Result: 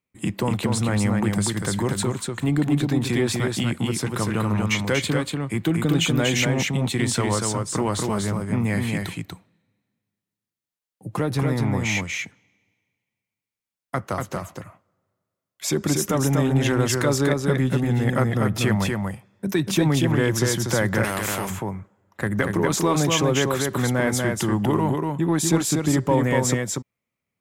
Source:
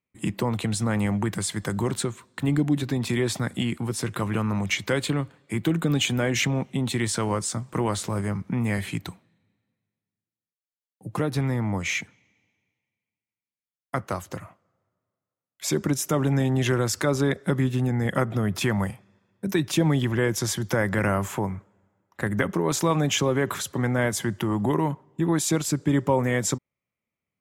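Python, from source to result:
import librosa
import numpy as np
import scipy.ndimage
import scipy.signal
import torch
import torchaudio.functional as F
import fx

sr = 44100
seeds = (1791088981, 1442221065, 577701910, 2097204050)

p1 = np.clip(x, -10.0 ** (-23.0 / 20.0), 10.0 ** (-23.0 / 20.0))
p2 = x + (p1 * 10.0 ** (-11.0 / 20.0))
p3 = p2 + 10.0 ** (-3.5 / 20.0) * np.pad(p2, (int(240 * sr / 1000.0), 0))[:len(p2)]
y = fx.spectral_comp(p3, sr, ratio=2.0, at=(21.03, 21.49), fade=0.02)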